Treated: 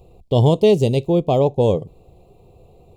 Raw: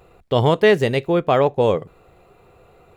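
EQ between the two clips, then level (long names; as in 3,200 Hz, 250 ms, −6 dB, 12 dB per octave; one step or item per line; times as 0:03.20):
dynamic equaliser 7,400 Hz, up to +5 dB, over −44 dBFS, Q 0.96
Butterworth band-reject 1,600 Hz, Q 0.77
low-shelf EQ 240 Hz +9 dB
−1.5 dB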